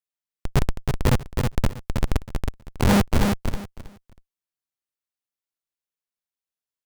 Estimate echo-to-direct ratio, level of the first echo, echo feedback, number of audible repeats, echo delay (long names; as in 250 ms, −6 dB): −4.5 dB, −4.5 dB, 20%, 3, 320 ms